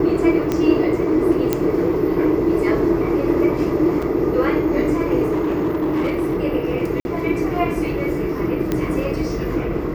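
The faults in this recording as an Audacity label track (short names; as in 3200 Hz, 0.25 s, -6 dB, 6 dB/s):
0.520000	0.520000	pop -8 dBFS
1.530000	1.530000	pop -4 dBFS
4.020000	4.020000	gap 4.8 ms
5.310000	6.370000	clipped -16.5 dBFS
7.000000	7.050000	gap 51 ms
8.720000	8.720000	pop -8 dBFS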